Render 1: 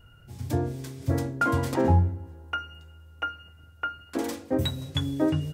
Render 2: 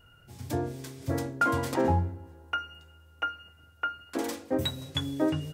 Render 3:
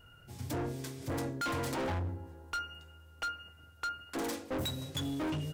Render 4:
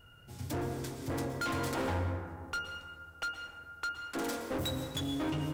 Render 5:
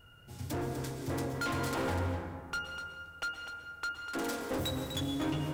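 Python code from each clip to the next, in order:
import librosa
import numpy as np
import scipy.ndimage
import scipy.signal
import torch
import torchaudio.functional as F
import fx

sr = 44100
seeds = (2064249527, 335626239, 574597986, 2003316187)

y1 = fx.low_shelf(x, sr, hz=220.0, db=-8.0)
y2 = np.clip(10.0 ** (32.5 / 20.0) * y1, -1.0, 1.0) / 10.0 ** (32.5 / 20.0)
y3 = fx.rev_plate(y2, sr, seeds[0], rt60_s=2.0, hf_ratio=0.35, predelay_ms=105, drr_db=5.5)
y4 = y3 + 10.0 ** (-9.0 / 20.0) * np.pad(y3, (int(248 * sr / 1000.0), 0))[:len(y3)]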